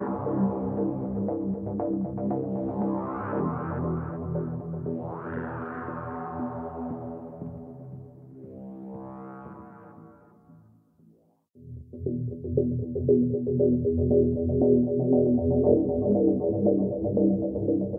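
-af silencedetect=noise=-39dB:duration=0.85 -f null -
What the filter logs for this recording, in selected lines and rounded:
silence_start: 10.04
silence_end: 11.63 | silence_duration: 1.59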